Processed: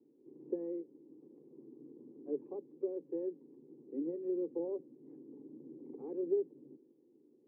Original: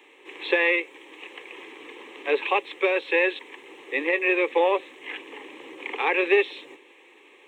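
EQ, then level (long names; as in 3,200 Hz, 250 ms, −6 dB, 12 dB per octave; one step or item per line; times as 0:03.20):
transistor ladder low-pass 240 Hz, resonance 40%
+11.0 dB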